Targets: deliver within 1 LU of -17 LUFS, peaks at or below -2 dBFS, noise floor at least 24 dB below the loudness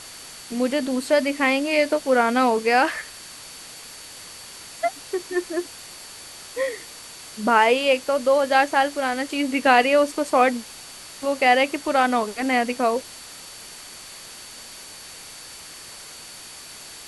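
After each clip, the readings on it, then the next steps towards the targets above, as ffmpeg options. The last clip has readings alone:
steady tone 4500 Hz; tone level -46 dBFS; noise floor -41 dBFS; noise floor target -45 dBFS; loudness -21.0 LUFS; peak -3.0 dBFS; loudness target -17.0 LUFS
-> -af "bandreject=f=4.5k:w=30"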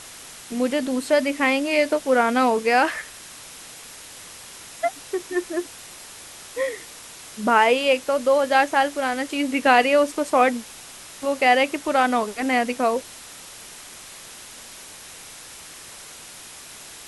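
steady tone none; noise floor -42 dBFS; noise floor target -45 dBFS
-> -af "afftdn=nr=6:nf=-42"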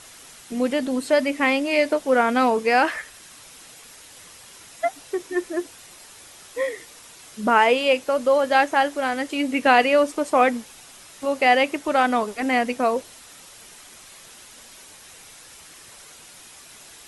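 noise floor -46 dBFS; loudness -21.0 LUFS; peak -3.0 dBFS; loudness target -17.0 LUFS
-> -af "volume=4dB,alimiter=limit=-2dB:level=0:latency=1"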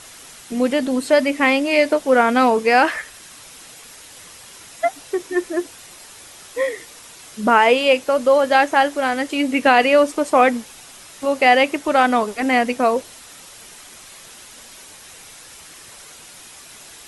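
loudness -17.5 LUFS; peak -2.0 dBFS; noise floor -42 dBFS

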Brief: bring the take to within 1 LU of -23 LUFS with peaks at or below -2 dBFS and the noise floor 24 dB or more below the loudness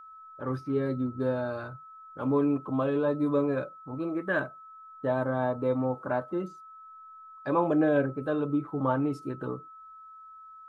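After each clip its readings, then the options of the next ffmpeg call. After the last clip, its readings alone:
steady tone 1300 Hz; tone level -46 dBFS; loudness -29.5 LUFS; peak -13.5 dBFS; loudness target -23.0 LUFS
-> -af "bandreject=f=1.3k:w=30"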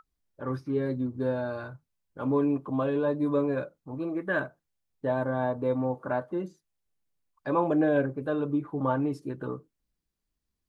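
steady tone none; loudness -29.5 LUFS; peak -14.0 dBFS; loudness target -23.0 LUFS
-> -af "volume=6.5dB"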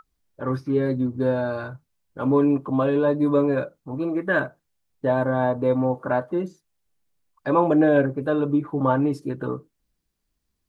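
loudness -23.0 LUFS; peak -7.5 dBFS; noise floor -77 dBFS

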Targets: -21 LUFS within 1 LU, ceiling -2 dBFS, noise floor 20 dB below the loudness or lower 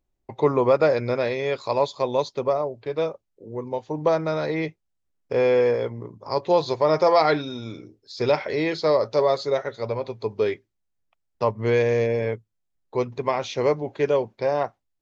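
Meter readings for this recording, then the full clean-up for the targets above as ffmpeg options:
loudness -23.5 LUFS; peak -6.5 dBFS; loudness target -21.0 LUFS
-> -af "volume=2.5dB"

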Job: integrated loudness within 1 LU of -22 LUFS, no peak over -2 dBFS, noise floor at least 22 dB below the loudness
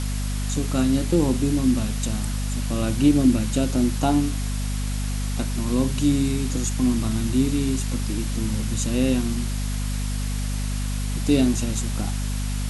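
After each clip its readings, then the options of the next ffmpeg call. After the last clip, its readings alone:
hum 50 Hz; harmonics up to 250 Hz; hum level -23 dBFS; noise floor -26 dBFS; noise floor target -46 dBFS; loudness -23.5 LUFS; peak -5.5 dBFS; loudness target -22.0 LUFS
-> -af "bandreject=f=50:t=h:w=4,bandreject=f=100:t=h:w=4,bandreject=f=150:t=h:w=4,bandreject=f=200:t=h:w=4,bandreject=f=250:t=h:w=4"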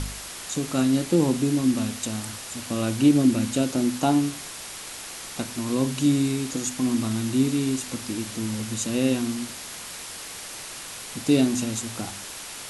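hum none; noise floor -38 dBFS; noise floor target -48 dBFS
-> -af "afftdn=nr=10:nf=-38"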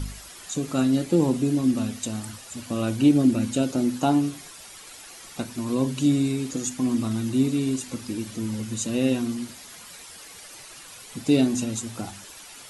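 noise floor -44 dBFS; noise floor target -47 dBFS
-> -af "afftdn=nr=6:nf=-44"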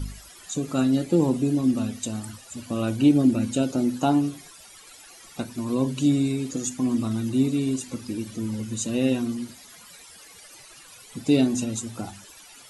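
noise floor -48 dBFS; loudness -24.5 LUFS; peak -7.5 dBFS; loudness target -22.0 LUFS
-> -af "volume=2.5dB"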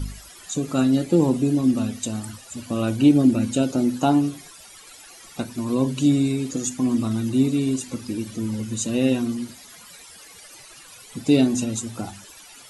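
loudness -22.0 LUFS; peak -5.0 dBFS; noise floor -46 dBFS

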